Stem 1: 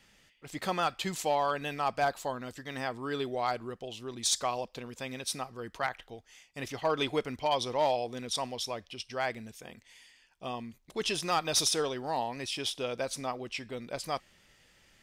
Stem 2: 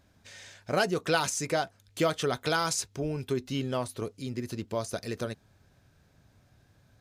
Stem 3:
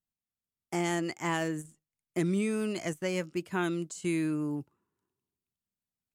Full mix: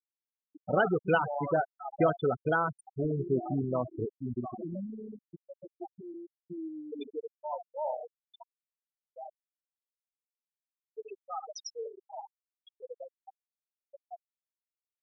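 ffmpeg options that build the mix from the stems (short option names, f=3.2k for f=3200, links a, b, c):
-filter_complex "[0:a]volume=-13.5dB,asplit=3[a][b][c];[a]atrim=end=5.88,asetpts=PTS-STARTPTS,afade=t=out:st=5.876:d=0.004:c=hsin[d];[b]atrim=start=5.88:end=6.92,asetpts=PTS-STARTPTS,volume=0[e];[c]atrim=start=6.92,asetpts=PTS-STARTPTS,afade=t=in:d=0.004:c=hsin[f];[d][e][f]concat=n=3:v=0:a=1,asplit=2[g][h];[h]volume=-4.5dB[i];[1:a]equalizer=f=6k:w=2:g=-10.5,volume=-6dB,afade=t=out:st=4.31:d=0.47:silence=0.251189[j];[2:a]highpass=51,lowpass=2.2k,adelay=2450,volume=-15.5dB,asplit=2[k][l];[l]volume=-21.5dB[m];[i][m]amix=inputs=2:normalize=0,aecho=0:1:71:1[n];[g][j][k][n]amix=inputs=4:normalize=0,afftfilt=real='re*gte(hypot(re,im),0.0447)':imag='im*gte(hypot(re,im),0.0447)':win_size=1024:overlap=0.75,acontrast=87"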